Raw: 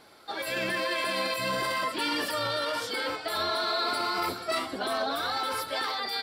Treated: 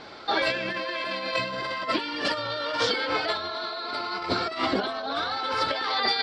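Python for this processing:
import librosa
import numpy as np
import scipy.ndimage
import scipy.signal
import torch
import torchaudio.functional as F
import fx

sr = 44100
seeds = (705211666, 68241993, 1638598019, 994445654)

y = scipy.signal.sosfilt(scipy.signal.butter(4, 5400.0, 'lowpass', fs=sr, output='sos'), x)
y = fx.over_compress(y, sr, threshold_db=-34.0, ratio=-0.5)
y = y * 10.0 ** (7.0 / 20.0)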